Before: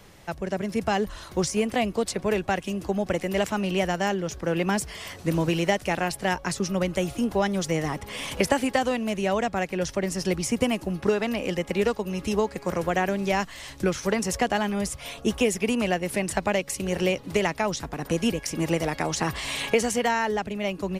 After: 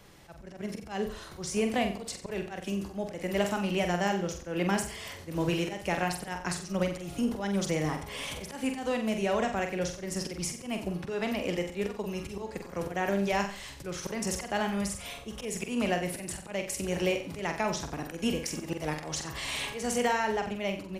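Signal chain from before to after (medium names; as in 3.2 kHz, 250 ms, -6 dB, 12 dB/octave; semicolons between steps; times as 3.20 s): slow attack 159 ms; flutter echo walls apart 7.8 m, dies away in 0.43 s; trim -4.5 dB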